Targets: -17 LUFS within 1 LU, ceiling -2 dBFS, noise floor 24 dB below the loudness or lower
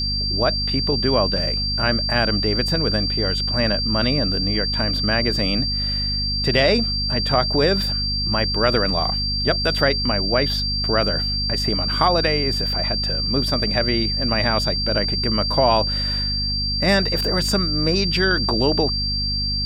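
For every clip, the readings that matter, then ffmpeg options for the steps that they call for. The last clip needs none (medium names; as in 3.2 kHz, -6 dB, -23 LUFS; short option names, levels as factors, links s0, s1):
hum 50 Hz; highest harmonic 250 Hz; hum level -24 dBFS; steady tone 4.7 kHz; tone level -22 dBFS; loudness -19.5 LUFS; peak level -2.5 dBFS; loudness target -17.0 LUFS
-> -af "bandreject=f=50:t=h:w=4,bandreject=f=100:t=h:w=4,bandreject=f=150:t=h:w=4,bandreject=f=200:t=h:w=4,bandreject=f=250:t=h:w=4"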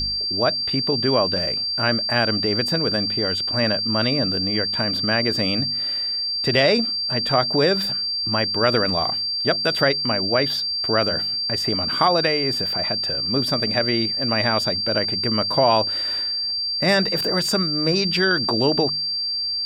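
hum not found; steady tone 4.7 kHz; tone level -22 dBFS
-> -af "bandreject=f=4700:w=30"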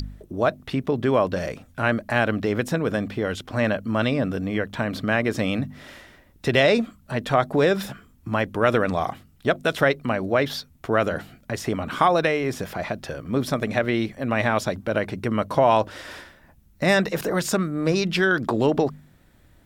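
steady tone not found; loudness -23.5 LUFS; peak level -4.5 dBFS; loudness target -17.0 LUFS
-> -af "volume=2.11,alimiter=limit=0.794:level=0:latency=1"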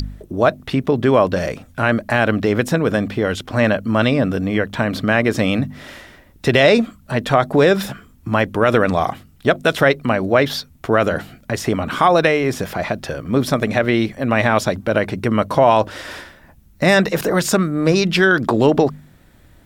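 loudness -17.5 LUFS; peak level -2.0 dBFS; noise floor -49 dBFS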